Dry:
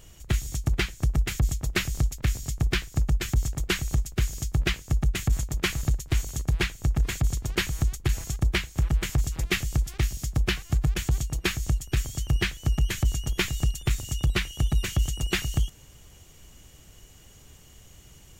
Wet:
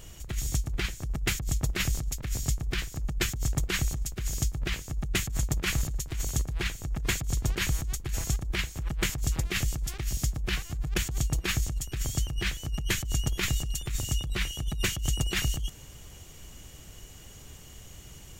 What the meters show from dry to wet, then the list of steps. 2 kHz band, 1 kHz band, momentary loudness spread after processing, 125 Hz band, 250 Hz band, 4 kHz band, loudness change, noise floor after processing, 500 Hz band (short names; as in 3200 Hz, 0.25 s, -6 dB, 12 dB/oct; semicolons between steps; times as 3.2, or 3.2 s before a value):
-2.5 dB, -3.0 dB, 19 LU, -5.0 dB, -4.0 dB, -1.0 dB, -3.0 dB, -48 dBFS, -4.0 dB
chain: negative-ratio compressor -28 dBFS, ratio -1